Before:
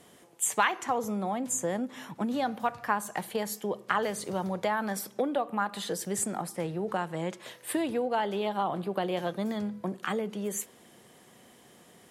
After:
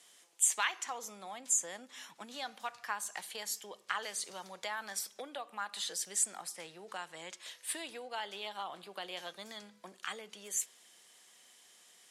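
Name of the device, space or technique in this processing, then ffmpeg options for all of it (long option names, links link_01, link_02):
piezo pickup straight into a mixer: -af "lowpass=6400,aderivative,volume=6.5dB"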